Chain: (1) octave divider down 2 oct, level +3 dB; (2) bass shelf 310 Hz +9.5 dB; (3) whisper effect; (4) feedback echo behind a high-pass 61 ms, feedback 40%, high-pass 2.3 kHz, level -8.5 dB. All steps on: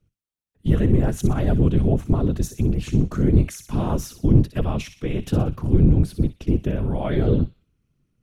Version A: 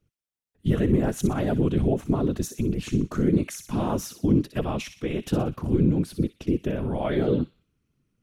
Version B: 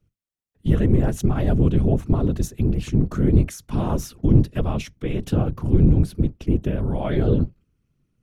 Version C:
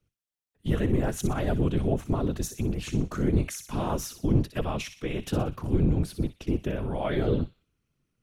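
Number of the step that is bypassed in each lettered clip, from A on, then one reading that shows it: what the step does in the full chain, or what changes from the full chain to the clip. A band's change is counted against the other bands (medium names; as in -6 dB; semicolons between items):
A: 1, 125 Hz band -7.0 dB; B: 4, echo-to-direct -13.5 dB to none; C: 2, 125 Hz band -8.0 dB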